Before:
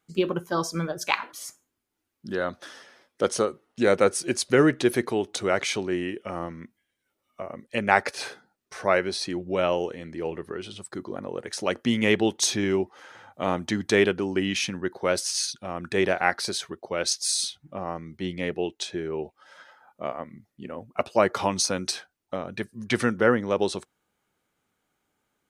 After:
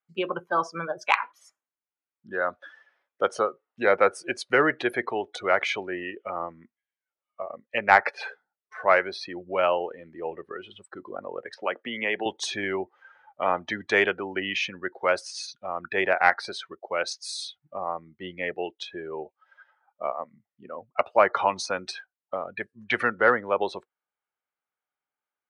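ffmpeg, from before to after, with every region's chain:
ffmpeg -i in.wav -filter_complex "[0:a]asettb=1/sr,asplit=3[link_01][link_02][link_03];[link_01]atrim=end=11.544[link_04];[link_02]atrim=start=11.54:end=12.26,asetpts=PTS-STARTPTS,afade=type=in:duration=0.004:curve=qsin,afade=type=out:start_time=0.716:duration=0.004:curve=qsin,acrossover=split=170 4500:gain=0.224 1 0.0708[link_05][link_06][link_07];[link_05][link_06][link_07]amix=inputs=3:normalize=0,acompressor=threshold=-23dB:ratio=2.5:attack=3.2:release=140:knee=1:detection=peak[link_08];[link_03]atrim=start=12.256[link_09];[link_04][link_08]acrossfade=duration=0.004:curve1=hsin:curve2=qsin[link_10];[link_10][link_09]acrossfade=duration=0.004:curve1=qsin:curve2=hsin,afftdn=noise_reduction=18:noise_floor=-36,acrossover=split=560 3100:gain=0.141 1 0.112[link_11][link_12][link_13];[link_11][link_12][link_13]amix=inputs=3:normalize=0,acontrast=35" out.wav

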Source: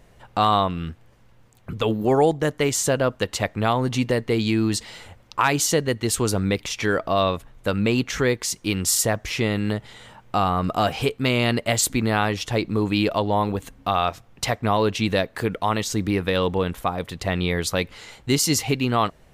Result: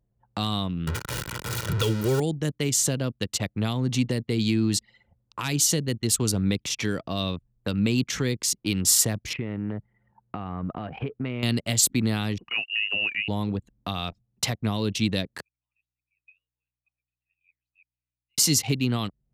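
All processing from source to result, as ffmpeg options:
ffmpeg -i in.wav -filter_complex "[0:a]asettb=1/sr,asplit=3[link_01][link_02][link_03];[link_01]atrim=end=0.874[link_04];[link_02]atrim=start=0.87:end=2.2,asetpts=PTS-STARTPTS,afade=type=in:duration=0.004:curve=qsin,afade=type=out:start_time=1.326:duration=0.004:curve=qsin,aeval=exprs='val(0)+0.5*0.0668*sgn(val(0))':channel_layout=same,equalizer=frequency=1400:width_type=o:width=0.69:gain=10,aecho=1:1:2.1:0.66,atrim=end_sample=58653[link_05];[link_03]atrim=start=2.196[link_06];[link_04][link_05]acrossfade=duration=0.004:curve1=hsin:curve2=qsin[link_07];[link_07][link_06]acrossfade=duration=0.004:curve1=qsin:curve2=hsin,asettb=1/sr,asplit=3[link_08][link_09][link_10];[link_08]atrim=end=9.334[link_11];[link_09]atrim=start=9.33:end=11.43,asetpts=PTS-STARTPTS,afade=type=in:duration=0.004:curve=qsin,afade=type=out:start_time=2.096:duration=0.004:curve=qsin,lowpass=frequency=2500:width=0.5412,lowpass=frequency=2500:width=1.3066,acompressor=threshold=-24dB:ratio=8:attack=3.2:release=140:knee=1:detection=peak[link_12];[link_10]atrim=start=11.426[link_13];[link_11][link_12]acrossfade=duration=0.004:curve1=hsin:curve2=qsin[link_14];[link_14][link_13]acrossfade=duration=0.004:curve1=qsin:curve2=hsin,asettb=1/sr,asplit=3[link_15][link_16][link_17];[link_15]atrim=end=12.384[link_18];[link_16]atrim=start=12.38:end=13.28,asetpts=PTS-STARTPTS,afade=type=in:duration=0.004:curve=qsin,afade=type=out:start_time=0.896:duration=0.004:curve=qsin,lowshelf=frequency=170:gain=-5.5,lowpass=frequency=2600:width_type=q:width=0.5098,lowpass=frequency=2600:width_type=q:width=0.6013,lowpass=frequency=2600:width_type=q:width=0.9,lowpass=frequency=2600:width_type=q:width=2.563,afreqshift=-3000[link_19];[link_17]atrim=start=13.276[link_20];[link_18][link_19]acrossfade=duration=0.004:curve1=hsin:curve2=qsin[link_21];[link_21][link_20]acrossfade=duration=0.004:curve1=qsin:curve2=hsin,asettb=1/sr,asplit=3[link_22][link_23][link_24];[link_22]atrim=end=15.414[link_25];[link_23]atrim=start=15.41:end=18.38,asetpts=PTS-STARTPTS,afade=type=in:duration=0.004:curve=qsin,afade=type=out:start_time=2.966:duration=0.004:curve=qsin,bandpass=frequency=2500:width_type=q:width=13,aderivative,aeval=exprs='val(0)+0.000158*(sin(2*PI*60*n/s)+sin(2*PI*2*60*n/s)/2+sin(2*PI*3*60*n/s)/3+sin(2*PI*4*60*n/s)/4+sin(2*PI*5*60*n/s)/5)':channel_layout=same[link_26];[link_24]atrim=start=18.376[link_27];[link_25][link_26]acrossfade=duration=0.004:curve1=hsin:curve2=qsin[link_28];[link_28][link_27]acrossfade=duration=0.004:curve1=qsin:curve2=hsin,highpass=100,anlmdn=15.8,acrossover=split=280|3000[link_29][link_30][link_31];[link_30]acompressor=threshold=-38dB:ratio=4[link_32];[link_29][link_32][link_31]amix=inputs=3:normalize=0,volume=1.5dB" out.wav

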